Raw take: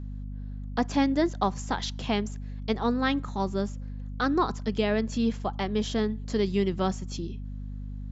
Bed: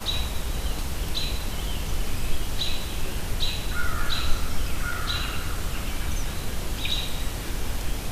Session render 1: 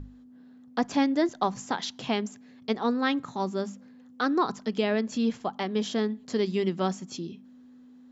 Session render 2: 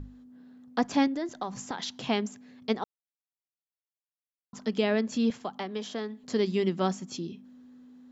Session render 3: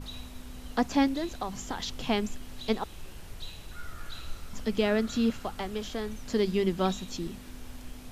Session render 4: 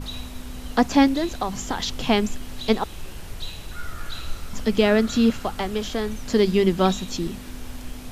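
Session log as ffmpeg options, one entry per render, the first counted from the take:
ffmpeg -i in.wav -af "bandreject=frequency=50:width_type=h:width=6,bandreject=frequency=100:width_type=h:width=6,bandreject=frequency=150:width_type=h:width=6,bandreject=frequency=200:width_type=h:width=6" out.wav
ffmpeg -i in.wav -filter_complex "[0:a]asettb=1/sr,asplit=3[link_01][link_02][link_03];[link_01]atrim=end=1.074[link_04];[link_02]atrim=start=1.07:end=1.91,asetpts=PTS-STARTPTS,afade=type=in:duration=0.004:curve=qsin,afade=type=out:start_time=0.836:duration=0.004:curve=qsin,acompressor=threshold=-30dB:ratio=4:attack=3.2:release=140:knee=1:detection=peak[link_05];[link_03]atrim=start=1.906[link_06];[link_04][link_05]acrossfade=duration=0.004:curve1=hsin:curve2=qsin[link_07];[link_07][link_06]acrossfade=duration=0.004:curve1=qsin:curve2=hsin,asettb=1/sr,asplit=3[link_08][link_09][link_10];[link_08]atrim=end=5.304[link_11];[link_09]atrim=start=5.3:end=6.24,asetpts=PTS-STARTPTS,afade=type=in:duration=0.004:curve=qsin,afade=type=out:start_time=0.936:duration=0.004:curve=qsin,acrossover=split=160|460|1700[link_12][link_13][link_14][link_15];[link_12]acompressor=threshold=-56dB:ratio=3[link_16];[link_13]acompressor=threshold=-41dB:ratio=3[link_17];[link_14]acompressor=threshold=-36dB:ratio=3[link_18];[link_15]acompressor=threshold=-43dB:ratio=3[link_19];[link_16][link_17][link_18][link_19]amix=inputs=4:normalize=0[link_20];[link_10]atrim=start=6.236[link_21];[link_11][link_20]acrossfade=duration=0.004:curve1=hsin:curve2=qsin[link_22];[link_22][link_21]acrossfade=duration=0.004:curve1=qsin:curve2=hsin,asplit=3[link_23][link_24][link_25];[link_23]atrim=end=2.84,asetpts=PTS-STARTPTS,afade=type=out:start_time=2.836:duration=0.004:curve=hsin[link_26];[link_24]atrim=start=2.84:end=4.53,asetpts=PTS-STARTPTS,volume=0[link_27];[link_25]atrim=start=4.53,asetpts=PTS-STARTPTS,afade=type=in:duration=0.004:curve=hsin[link_28];[link_26][link_27][link_28]concat=n=3:v=0:a=1" out.wav
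ffmpeg -i in.wav -i bed.wav -filter_complex "[1:a]volume=-15.5dB[link_01];[0:a][link_01]amix=inputs=2:normalize=0" out.wav
ffmpeg -i in.wav -af "volume=8dB" out.wav

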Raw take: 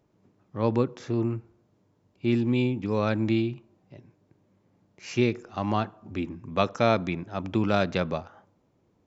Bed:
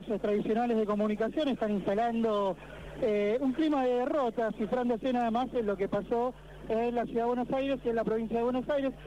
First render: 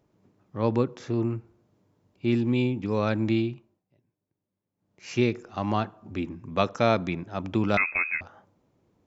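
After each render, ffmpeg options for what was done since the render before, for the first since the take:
ffmpeg -i in.wav -filter_complex "[0:a]asettb=1/sr,asplit=3[link_01][link_02][link_03];[link_01]atrim=end=7.774[link_04];[link_02]atrim=start=7.77:end=8.21,asetpts=PTS-STARTPTS,afade=type=in:duration=0.004:curve=qsin,afade=type=out:start_time=0.436:duration=0.004:curve=qsin,lowpass=frequency=2300:width_type=q:width=0.5098,lowpass=frequency=2300:width_type=q:width=0.6013,lowpass=frequency=2300:width_type=q:width=0.9,lowpass=frequency=2300:width_type=q:width=2.563,afreqshift=-2700[link_05];[link_03]atrim=start=8.206[link_06];[link_04][link_05]acrossfade=duration=0.004:curve1=hsin:curve2=qsin[link_07];[link_07][link_06]acrossfade=duration=0.004:curve1=qsin:curve2=hsin,asplit=3[link_08][link_09][link_10];[link_08]atrim=end=3.83,asetpts=PTS-STARTPTS,afade=type=out:start_time=3.45:duration=0.38:silence=0.1[link_11];[link_09]atrim=start=3.83:end=4.76,asetpts=PTS-STARTPTS,volume=-20dB[link_12];[link_10]atrim=start=4.76,asetpts=PTS-STARTPTS,afade=type=in:duration=0.38:silence=0.1[link_13];[link_11][link_12][link_13]concat=n=3:v=0:a=1" out.wav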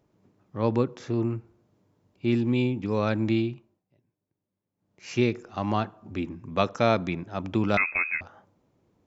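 ffmpeg -i in.wav -af anull out.wav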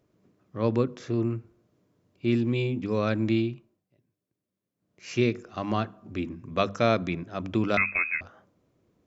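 ffmpeg -i in.wav -af "equalizer=frequency=860:width_type=o:width=0.24:gain=-10,bandreject=frequency=50:width_type=h:width=6,bandreject=frequency=100:width_type=h:width=6,bandreject=frequency=150:width_type=h:width=6,bandreject=frequency=200:width_type=h:width=6,bandreject=frequency=250:width_type=h:width=6" out.wav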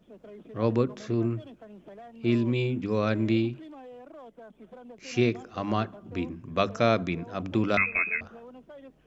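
ffmpeg -i in.wav -i bed.wav -filter_complex "[1:a]volume=-17.5dB[link_01];[0:a][link_01]amix=inputs=2:normalize=0" out.wav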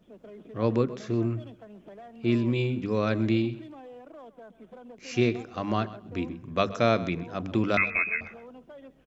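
ffmpeg -i in.wav -af "aecho=1:1:129|258:0.141|0.0254" out.wav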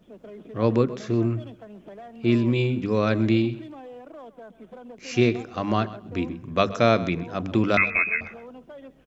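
ffmpeg -i in.wav -af "volume=4dB" out.wav

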